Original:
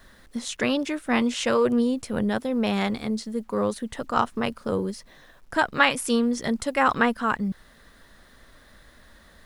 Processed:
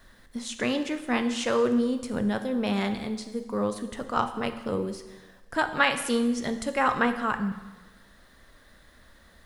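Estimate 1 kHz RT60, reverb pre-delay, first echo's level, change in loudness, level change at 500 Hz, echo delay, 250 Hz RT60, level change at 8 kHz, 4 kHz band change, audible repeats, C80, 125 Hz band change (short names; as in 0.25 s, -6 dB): 1.2 s, 6 ms, none, -2.5 dB, -2.5 dB, none, 1.2 s, -3.0 dB, -3.0 dB, none, 12.5 dB, -2.5 dB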